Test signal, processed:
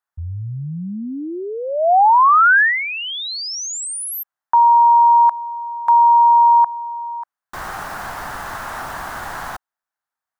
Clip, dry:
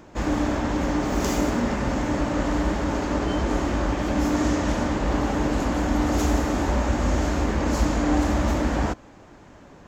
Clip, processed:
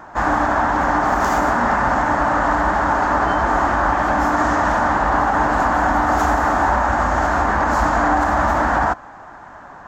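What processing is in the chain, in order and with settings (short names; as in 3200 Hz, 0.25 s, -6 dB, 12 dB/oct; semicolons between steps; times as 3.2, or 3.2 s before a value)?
band shelf 1100 Hz +15.5 dB; limiter -7.5 dBFS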